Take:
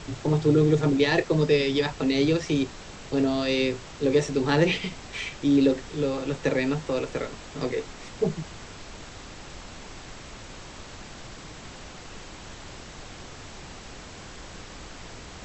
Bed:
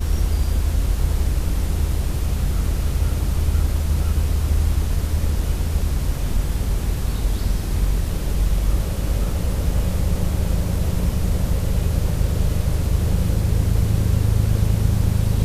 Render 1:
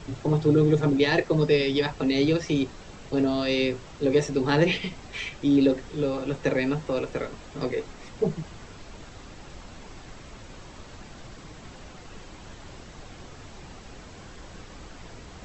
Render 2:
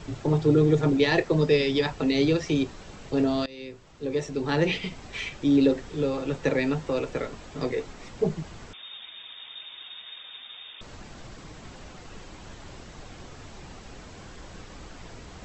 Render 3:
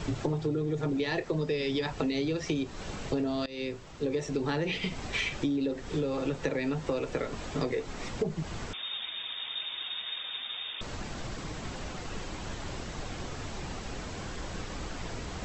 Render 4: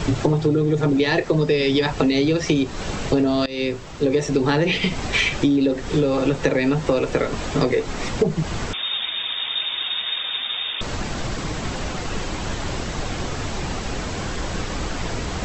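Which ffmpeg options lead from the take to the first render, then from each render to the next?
-af "afftdn=nr=6:nf=-43"
-filter_complex "[0:a]asettb=1/sr,asplit=3[a][b][c];[a]atrim=end=8.734[d];[b]atrim=start=8.73:end=10.81,asetpts=PTS-STARTPTS,afade=t=in:d=0.004:c=qsin,afade=t=out:st=2.076:d=0.004:c=qsin,lowpass=f=3.1k:t=q:w=0.5098,lowpass=f=3.1k:t=q:w=0.6013,lowpass=f=3.1k:t=q:w=0.9,lowpass=f=3.1k:t=q:w=2.563,afreqshift=-3700[e];[c]atrim=start=10.806[f];[d][e]acrossfade=d=0.004:c1=hsin:c2=qsin[g];[g][f]acrossfade=d=0.004:c1=qsin:c2=hsin,asplit=2[h][i];[h]atrim=end=3.46,asetpts=PTS-STARTPTS,afade=t=out:st=3.456:d=0.004:c=hsin:silence=0.0749894[j];[i]atrim=start=3.46,asetpts=PTS-STARTPTS,afade=t=in:d=1.59:silence=0.0749894[k];[j][k]concat=n=2:v=0:a=1"
-filter_complex "[0:a]asplit=2[a][b];[b]alimiter=limit=-19dB:level=0:latency=1,volume=-1dB[c];[a][c]amix=inputs=2:normalize=0,acompressor=threshold=-27dB:ratio=10"
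-af "volume=11.5dB"

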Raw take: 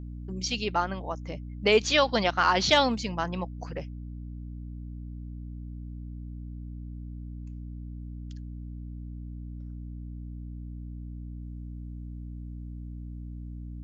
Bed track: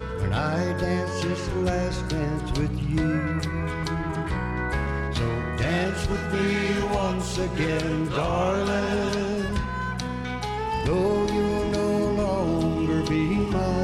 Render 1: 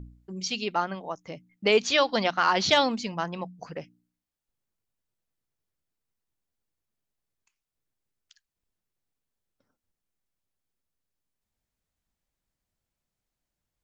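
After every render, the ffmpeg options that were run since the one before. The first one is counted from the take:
-af "bandreject=f=60:t=h:w=4,bandreject=f=120:t=h:w=4,bandreject=f=180:t=h:w=4,bandreject=f=240:t=h:w=4,bandreject=f=300:t=h:w=4"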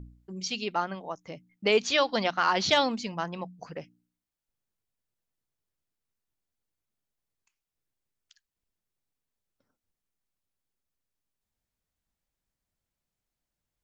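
-af "volume=-2dB"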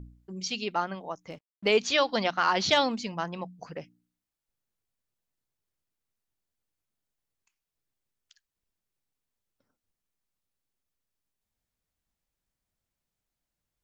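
-filter_complex "[0:a]asettb=1/sr,asplit=3[a][b][c];[a]atrim=end=1.304[d];[b]atrim=start=1.3:end=1.72,asetpts=PTS-STARTPTS,afade=t=in:d=0.004:c=qsin,afade=t=out:st=0.416:d=0.004:c=qsin,aeval=exprs='sgn(val(0))*max(abs(val(0))-0.00188,0)':c=same[e];[c]atrim=start=1.716[f];[d][e]acrossfade=d=0.004:c1=hsin:c2=qsin[g];[g][f]acrossfade=d=0.004:c1=qsin:c2=hsin"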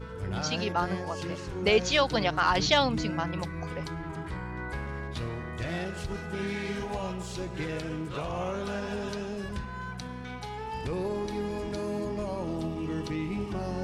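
-filter_complex "[1:a]volume=-9dB[a];[0:a][a]amix=inputs=2:normalize=0"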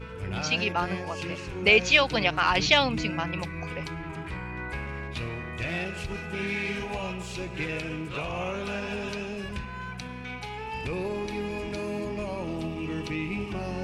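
-af "equalizer=f=2.5k:w=3.1:g=12.5"

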